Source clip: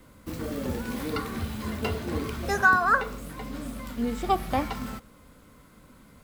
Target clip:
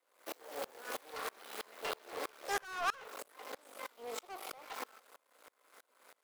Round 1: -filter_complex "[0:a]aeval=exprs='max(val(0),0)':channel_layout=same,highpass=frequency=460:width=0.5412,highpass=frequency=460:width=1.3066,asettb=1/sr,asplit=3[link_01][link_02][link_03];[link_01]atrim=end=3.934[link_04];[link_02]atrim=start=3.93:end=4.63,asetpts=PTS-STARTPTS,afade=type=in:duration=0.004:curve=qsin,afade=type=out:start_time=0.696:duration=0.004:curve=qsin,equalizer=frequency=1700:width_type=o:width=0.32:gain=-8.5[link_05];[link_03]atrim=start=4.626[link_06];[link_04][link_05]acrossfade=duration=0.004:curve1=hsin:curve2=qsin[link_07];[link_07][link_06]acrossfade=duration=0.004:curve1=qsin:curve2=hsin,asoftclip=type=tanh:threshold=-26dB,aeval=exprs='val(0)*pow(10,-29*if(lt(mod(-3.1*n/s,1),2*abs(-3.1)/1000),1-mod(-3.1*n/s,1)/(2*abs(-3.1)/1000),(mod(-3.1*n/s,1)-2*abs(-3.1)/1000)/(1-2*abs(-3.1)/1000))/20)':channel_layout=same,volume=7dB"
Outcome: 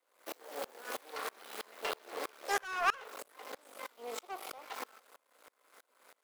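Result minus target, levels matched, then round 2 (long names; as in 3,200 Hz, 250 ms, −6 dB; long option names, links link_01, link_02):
soft clipping: distortion −5 dB
-filter_complex "[0:a]aeval=exprs='max(val(0),0)':channel_layout=same,highpass=frequency=460:width=0.5412,highpass=frequency=460:width=1.3066,asettb=1/sr,asplit=3[link_01][link_02][link_03];[link_01]atrim=end=3.934[link_04];[link_02]atrim=start=3.93:end=4.63,asetpts=PTS-STARTPTS,afade=type=in:duration=0.004:curve=qsin,afade=type=out:start_time=0.696:duration=0.004:curve=qsin,equalizer=frequency=1700:width_type=o:width=0.32:gain=-8.5[link_05];[link_03]atrim=start=4.626[link_06];[link_04][link_05]acrossfade=duration=0.004:curve1=hsin:curve2=qsin[link_07];[link_07][link_06]acrossfade=duration=0.004:curve1=qsin:curve2=hsin,asoftclip=type=tanh:threshold=-33dB,aeval=exprs='val(0)*pow(10,-29*if(lt(mod(-3.1*n/s,1),2*abs(-3.1)/1000),1-mod(-3.1*n/s,1)/(2*abs(-3.1)/1000),(mod(-3.1*n/s,1)-2*abs(-3.1)/1000)/(1-2*abs(-3.1)/1000))/20)':channel_layout=same,volume=7dB"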